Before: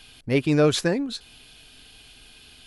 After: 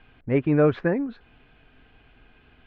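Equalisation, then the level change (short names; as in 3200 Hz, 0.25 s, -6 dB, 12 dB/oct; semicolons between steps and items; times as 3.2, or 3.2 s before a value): LPF 2000 Hz 24 dB/oct; 0.0 dB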